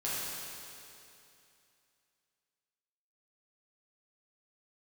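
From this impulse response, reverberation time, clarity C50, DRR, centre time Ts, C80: 2.7 s, −4.0 dB, −9.5 dB, 179 ms, −1.5 dB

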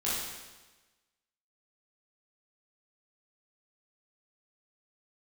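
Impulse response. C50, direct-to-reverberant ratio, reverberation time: −1.5 dB, −9.5 dB, 1.2 s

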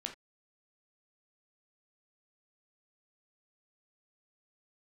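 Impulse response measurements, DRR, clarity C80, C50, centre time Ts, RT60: 3.0 dB, 17.5 dB, 10.0 dB, 15 ms, non-exponential decay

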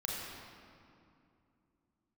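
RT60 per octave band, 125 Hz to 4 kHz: 3.3 s, can't be measured, 2.7 s, 2.5 s, 2.0 s, 1.6 s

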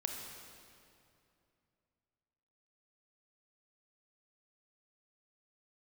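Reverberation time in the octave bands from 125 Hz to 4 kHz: 3.3, 3.0, 2.7, 2.5, 2.3, 2.0 seconds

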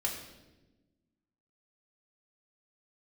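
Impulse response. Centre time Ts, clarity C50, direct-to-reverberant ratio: 34 ms, 5.5 dB, −1.5 dB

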